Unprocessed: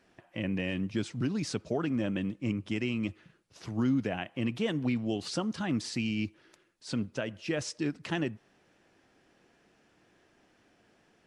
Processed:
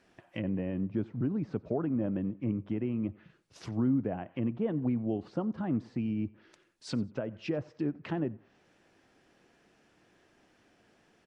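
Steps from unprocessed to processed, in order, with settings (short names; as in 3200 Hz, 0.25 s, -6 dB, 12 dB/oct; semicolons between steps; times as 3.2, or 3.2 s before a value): 5.04–6.14 high shelf 6800 Hz +11.5 dB; treble ducked by the level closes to 910 Hz, closed at -30.5 dBFS; feedback echo 91 ms, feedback 28%, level -23.5 dB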